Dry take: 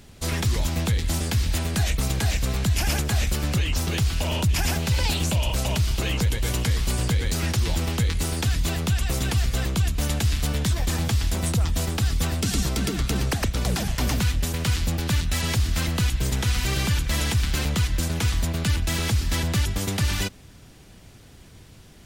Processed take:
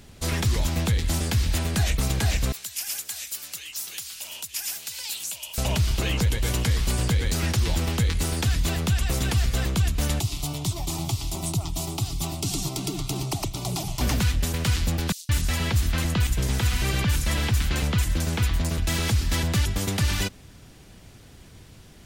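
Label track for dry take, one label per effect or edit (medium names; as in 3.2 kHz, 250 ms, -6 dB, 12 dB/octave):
2.520000	5.580000	differentiator
10.200000	14.010000	static phaser centre 330 Hz, stages 8
15.120000	18.780000	bands offset in time highs, lows 170 ms, split 4.9 kHz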